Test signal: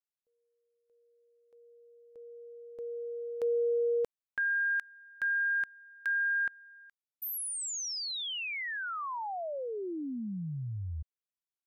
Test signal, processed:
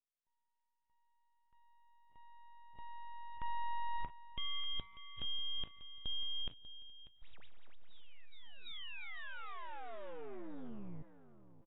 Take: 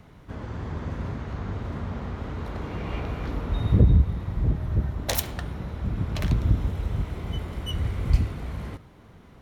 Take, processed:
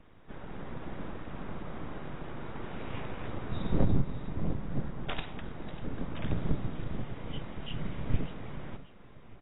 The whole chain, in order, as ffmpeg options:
-af "aecho=1:1:592|1184|1776|2368:0.158|0.0666|0.028|0.0117,aeval=exprs='abs(val(0))':c=same,volume=-5.5dB" -ar 16000 -c:a aac -b:a 16k

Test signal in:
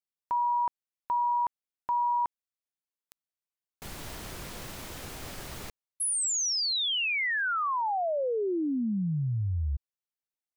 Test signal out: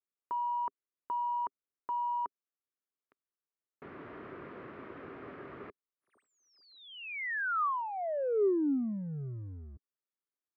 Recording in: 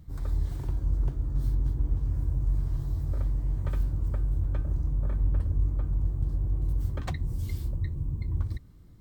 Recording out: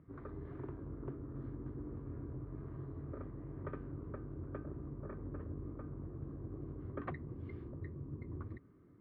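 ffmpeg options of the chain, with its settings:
-filter_complex "[0:a]asplit=2[a][b];[b]asoftclip=type=hard:threshold=-32.5dB,volume=-8dB[c];[a][c]amix=inputs=2:normalize=0,highpass=160,equalizer=f=180:t=q:w=4:g=-3,equalizer=f=280:t=q:w=4:g=5,equalizer=f=400:t=q:w=4:g=8,equalizer=f=830:t=q:w=4:g=-6,equalizer=f=1.2k:t=q:w=4:g=5,lowpass=f=2k:w=0.5412,lowpass=f=2k:w=1.3066,volume=-6.5dB"

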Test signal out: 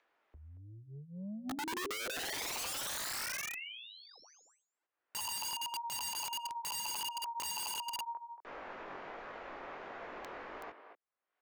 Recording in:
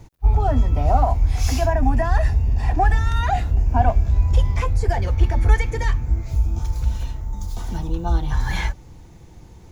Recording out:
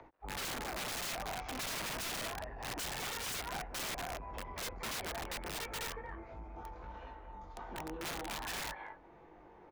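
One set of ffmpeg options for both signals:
-filter_complex "[0:a]flanger=delay=19:depth=3.1:speed=1.4,aresample=16000,asoftclip=type=tanh:threshold=-16dB,aresample=44100,equalizer=f=99:w=3:g=-5,acrossover=split=200|1100[a][b][c];[a]acompressor=threshold=-23dB:ratio=4[d];[b]acompressor=threshold=-28dB:ratio=4[e];[c]acompressor=threshold=-33dB:ratio=4[f];[d][e][f]amix=inputs=3:normalize=0,acrossover=split=350 2100:gain=0.0794 1 0.158[g][h][i];[g][h][i]amix=inputs=3:normalize=0,acompressor=mode=upward:threshold=-51dB:ratio=2.5,lowpass=3k,asplit=2[j][k];[k]adelay=230,highpass=300,lowpass=3.4k,asoftclip=type=hard:threshold=-27.5dB,volume=-9dB[l];[j][l]amix=inputs=2:normalize=0,aeval=exprs='(mod(47.3*val(0)+1,2)-1)/47.3':c=same,volume=-1dB"

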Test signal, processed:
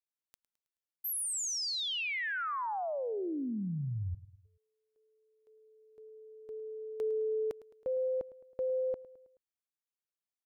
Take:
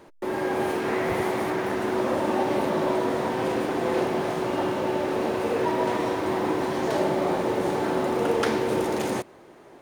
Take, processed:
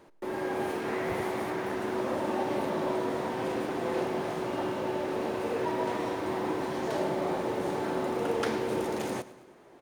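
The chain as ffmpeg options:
-af "aecho=1:1:107|214|321|428:0.133|0.068|0.0347|0.0177,volume=-6dB"

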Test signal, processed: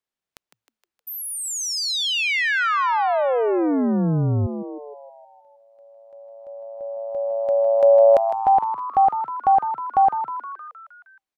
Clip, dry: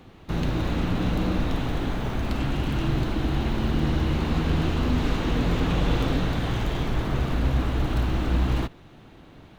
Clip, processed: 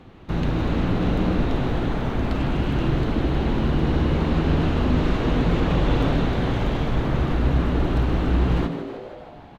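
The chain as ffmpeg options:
-filter_complex "[0:a]lowpass=f=3k:p=1,asplit=2[a][b];[b]asplit=7[c][d][e][f][g][h][i];[c]adelay=156,afreqshift=110,volume=-10dB[j];[d]adelay=312,afreqshift=220,volume=-14.4dB[k];[e]adelay=468,afreqshift=330,volume=-18.9dB[l];[f]adelay=624,afreqshift=440,volume=-23.3dB[m];[g]adelay=780,afreqshift=550,volume=-27.7dB[n];[h]adelay=936,afreqshift=660,volume=-32.2dB[o];[i]adelay=1092,afreqshift=770,volume=-36.6dB[p];[j][k][l][m][n][o][p]amix=inputs=7:normalize=0[q];[a][q]amix=inputs=2:normalize=0,volume=2.5dB"

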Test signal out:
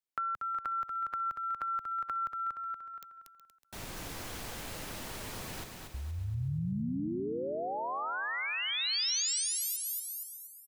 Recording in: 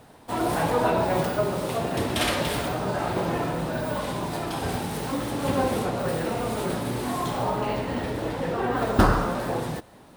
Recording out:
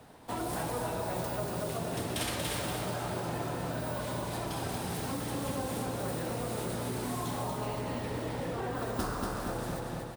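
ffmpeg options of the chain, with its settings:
-filter_complex "[0:a]asplit=2[a][b];[b]aecho=0:1:236|472|708|944|1180:0.562|0.231|0.0945|0.0388|0.0159[c];[a][c]amix=inputs=2:normalize=0,acrossover=split=130|5100[d][e][f];[d]acompressor=threshold=-39dB:ratio=4[g];[e]acompressor=threshold=-31dB:ratio=4[h];[f]acompressor=threshold=-31dB:ratio=4[i];[g][h][i]amix=inputs=3:normalize=0,asplit=2[j][k];[k]aecho=0:1:370:0.211[l];[j][l]amix=inputs=2:normalize=0,volume=-3.5dB"

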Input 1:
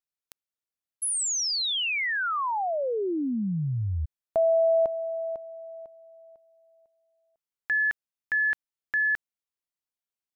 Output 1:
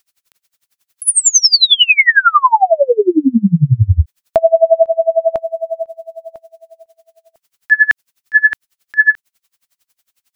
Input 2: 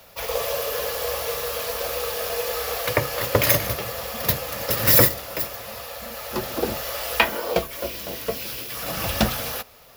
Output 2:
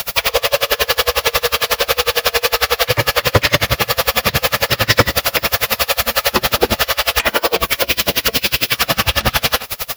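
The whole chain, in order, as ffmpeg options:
-filter_complex "[0:a]tiltshelf=f=800:g=-9,acrossover=split=4900[a][b];[b]acompressor=threshold=-33dB:ratio=4:attack=1:release=60[c];[a][c]amix=inputs=2:normalize=0,lowshelf=f=320:g=11,asplit=2[d][e];[e]acompressor=threshold=-35dB:ratio=6:attack=58:release=235:detection=peak,volume=2.5dB[f];[d][f]amix=inputs=2:normalize=0,asoftclip=type=hard:threshold=-9.5dB,alimiter=level_in=18dB:limit=-1dB:release=50:level=0:latency=1,aeval=exprs='val(0)*pow(10,-29*(0.5-0.5*cos(2*PI*11*n/s))/20)':c=same"

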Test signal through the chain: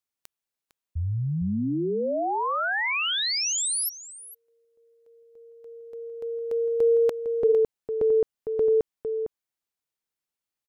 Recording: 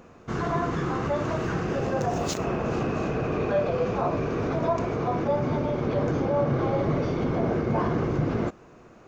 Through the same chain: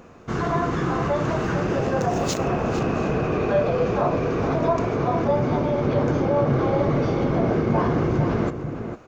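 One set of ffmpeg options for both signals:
-filter_complex "[0:a]asplit=2[a][b];[b]adelay=454.8,volume=-8dB,highshelf=f=4k:g=-10.2[c];[a][c]amix=inputs=2:normalize=0,volume=3.5dB"

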